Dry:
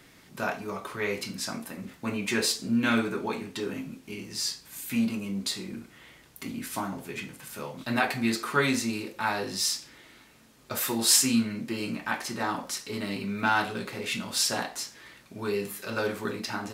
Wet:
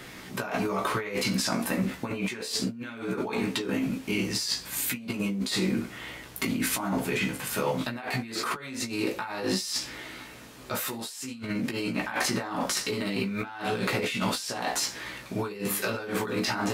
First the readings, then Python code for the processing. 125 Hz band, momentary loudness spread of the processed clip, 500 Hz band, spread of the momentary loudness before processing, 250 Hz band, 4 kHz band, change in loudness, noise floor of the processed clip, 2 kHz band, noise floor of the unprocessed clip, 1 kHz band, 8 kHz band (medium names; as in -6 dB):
+3.5 dB, 8 LU, +1.5 dB, 13 LU, +0.5 dB, -0.5 dB, -0.5 dB, -45 dBFS, -0.5 dB, -56 dBFS, -1.0 dB, -3.0 dB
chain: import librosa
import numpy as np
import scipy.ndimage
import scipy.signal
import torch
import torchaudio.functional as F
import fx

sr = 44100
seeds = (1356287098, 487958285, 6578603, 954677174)

y = fx.bass_treble(x, sr, bass_db=-2, treble_db=-3)
y = fx.over_compress(y, sr, threshold_db=-38.0, ratio=-1.0)
y = fx.doubler(y, sr, ms=16.0, db=-5.5)
y = y * librosa.db_to_amplitude(5.5)